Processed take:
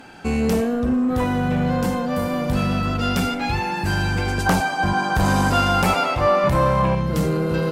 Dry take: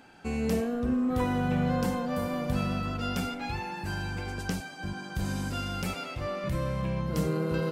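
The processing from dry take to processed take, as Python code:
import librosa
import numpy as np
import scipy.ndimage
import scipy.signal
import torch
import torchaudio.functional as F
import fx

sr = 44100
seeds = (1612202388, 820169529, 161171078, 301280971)

y = fx.rider(x, sr, range_db=10, speed_s=2.0)
y = fx.fold_sine(y, sr, drive_db=6, ceiling_db=-14.0)
y = fx.peak_eq(y, sr, hz=900.0, db=12.0, octaves=1.3, at=(4.46, 6.95))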